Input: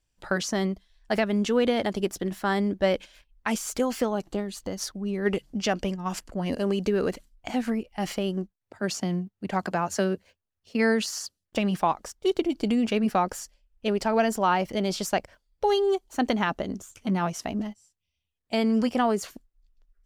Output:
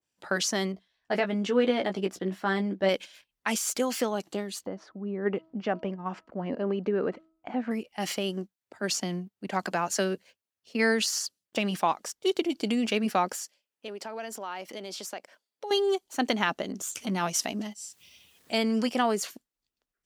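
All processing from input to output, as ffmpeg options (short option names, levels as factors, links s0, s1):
-filter_complex "[0:a]asettb=1/sr,asplit=3[s0][s1][s2];[s0]atrim=end=0.724[s3];[s1]atrim=start=0.72:end=2.89,asetpts=PTS-STARTPTS,afade=t=in:d=0.004:c=qsin,afade=t=out:st=2.166:d=0.004:c=qsin,lowpass=f=1700:p=1,asplit=2[s4][s5];[s5]adelay=16,volume=0.501[s6];[s4][s6]amix=inputs=2:normalize=0,atrim=end_sample=95697[s7];[s2]atrim=start=2.886[s8];[s3][s7]acrossfade=d=0.004:c1=hsin:c2=qsin[s9];[s9][s8]acrossfade=d=0.004:c1=qsin:c2=hsin,asettb=1/sr,asplit=3[s10][s11][s12];[s10]atrim=end=4.664[s13];[s11]atrim=start=4.66:end=7.71,asetpts=PTS-STARTPTS,afade=t=in:d=0.004:c=qsin,afade=t=out:st=3.046:d=0.004:c=qsin,lowpass=1400,bandreject=f=322.6:t=h:w=4,bandreject=f=645.2:t=h:w=4,bandreject=f=967.8:t=h:w=4,bandreject=f=1290.4:t=h:w=4[s14];[s12]atrim=start=7.706[s15];[s13][s14]acrossfade=d=0.004:c1=hsin:c2=qsin[s16];[s16][s15]acrossfade=d=0.004:c1=qsin:c2=hsin,asettb=1/sr,asplit=3[s17][s18][s19];[s17]atrim=end=13.354[s20];[s18]atrim=start=13.35:end=15.71,asetpts=PTS-STARTPTS,afade=t=in:d=0.004:c=qsin,afade=t=out:st=2.356:d=0.004:c=qsin,highpass=260,acompressor=threshold=0.0141:ratio=2.5:attack=3.2:release=140:knee=1:detection=peak[s21];[s19]atrim=start=15.706[s22];[s20][s21]acrossfade=d=0.004:c1=hsin:c2=qsin[s23];[s23][s22]acrossfade=d=0.004:c1=qsin:c2=hsin,asettb=1/sr,asplit=3[s24][s25][s26];[s24]atrim=end=16.724[s27];[s25]atrim=start=16.72:end=18.58,asetpts=PTS-STARTPTS,afade=t=in:d=0.004:c=qsin,afade=t=out:st=1.856:d=0.004:c=qsin,acompressor=mode=upward:threshold=0.0355:ratio=2.5:attack=3.2:release=140:knee=2.83:detection=peak,adynamicequalizer=threshold=0.00447:dfrequency=3000:dqfactor=0.7:tfrequency=3000:tqfactor=0.7:attack=5:release=100:ratio=0.375:range=2.5:mode=boostabove:tftype=highshelf[s28];[s26]atrim=start=18.576[s29];[s27][s28]acrossfade=d=0.004:c1=hsin:c2=qsin[s30];[s30][s29]acrossfade=d=0.004:c1=qsin:c2=hsin,highpass=190,adynamicequalizer=threshold=0.01:dfrequency=1700:dqfactor=0.7:tfrequency=1700:tqfactor=0.7:attack=5:release=100:ratio=0.375:range=3:mode=boostabove:tftype=highshelf,volume=0.794"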